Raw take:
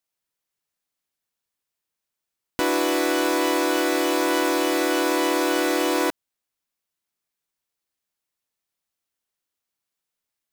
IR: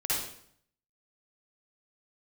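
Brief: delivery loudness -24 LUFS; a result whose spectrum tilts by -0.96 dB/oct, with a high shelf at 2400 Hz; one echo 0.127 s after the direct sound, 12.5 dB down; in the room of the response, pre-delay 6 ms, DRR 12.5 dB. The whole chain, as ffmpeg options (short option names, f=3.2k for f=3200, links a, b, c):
-filter_complex "[0:a]highshelf=f=2.4k:g=8.5,aecho=1:1:127:0.237,asplit=2[a][b];[1:a]atrim=start_sample=2205,adelay=6[c];[b][c]afir=irnorm=-1:irlink=0,volume=-20dB[d];[a][d]amix=inputs=2:normalize=0,volume=-5.5dB"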